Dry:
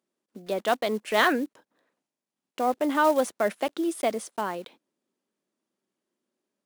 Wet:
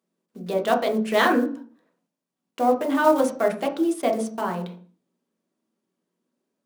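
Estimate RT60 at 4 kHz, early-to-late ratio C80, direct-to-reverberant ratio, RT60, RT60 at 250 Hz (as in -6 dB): 0.40 s, 15.5 dB, 2.0 dB, 0.45 s, 0.70 s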